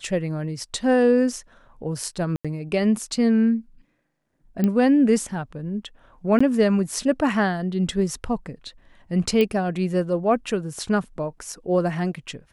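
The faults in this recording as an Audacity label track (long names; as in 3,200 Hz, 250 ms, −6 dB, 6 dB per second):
2.360000	2.450000	drop-out 86 ms
4.640000	4.640000	click −11 dBFS
6.390000	6.410000	drop-out 15 ms
9.410000	9.410000	click −11 dBFS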